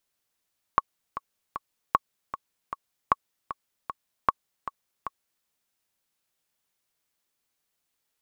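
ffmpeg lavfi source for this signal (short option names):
-f lavfi -i "aevalsrc='pow(10,(-5.5-13*gte(mod(t,3*60/154),60/154))/20)*sin(2*PI*1110*mod(t,60/154))*exp(-6.91*mod(t,60/154)/0.03)':d=4.67:s=44100"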